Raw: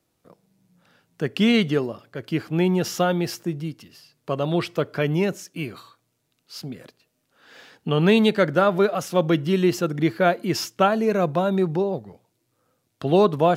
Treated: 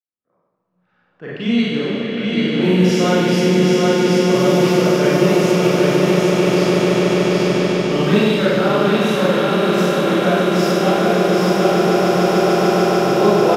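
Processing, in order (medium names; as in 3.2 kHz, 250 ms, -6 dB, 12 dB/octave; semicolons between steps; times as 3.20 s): fade-in on the opening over 3.38 s; spectral noise reduction 7 dB; on a send: echo with a slow build-up 147 ms, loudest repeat 8, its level -8 dB; on the sum: level-controlled noise filter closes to 1.6 kHz, open at -16.5 dBFS; delay 784 ms -3 dB; gain riding within 4 dB 0.5 s; Schroeder reverb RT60 1.4 s, combs from 30 ms, DRR -10 dB; tape noise reduction on one side only encoder only; trim -7.5 dB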